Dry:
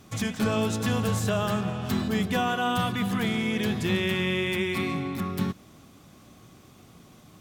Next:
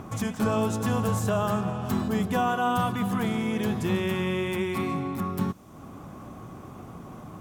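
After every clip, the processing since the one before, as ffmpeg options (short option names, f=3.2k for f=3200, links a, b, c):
-filter_complex "[0:a]equalizer=f=1k:t=o:w=1:g=5,equalizer=f=2k:t=o:w=1:g=-5,equalizer=f=4k:t=o:w=1:g=-7,acrossover=split=2500[a][b];[a]acompressor=mode=upward:threshold=-31dB:ratio=2.5[c];[c][b]amix=inputs=2:normalize=0"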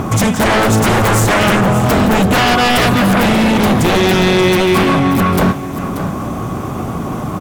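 -af "aeval=exprs='0.2*sin(PI/2*3.98*val(0)/0.2)':c=same,aecho=1:1:583:0.266,volume=5.5dB"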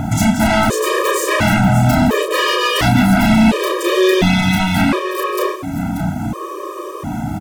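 -filter_complex "[0:a]asplit=2[a][b];[b]adelay=32,volume=-4dB[c];[a][c]amix=inputs=2:normalize=0,afftfilt=real='re*gt(sin(2*PI*0.71*pts/sr)*(1-2*mod(floor(b*sr/1024/320),2)),0)':imag='im*gt(sin(2*PI*0.71*pts/sr)*(1-2*mod(floor(b*sr/1024/320),2)),0)':win_size=1024:overlap=0.75,volume=-1dB"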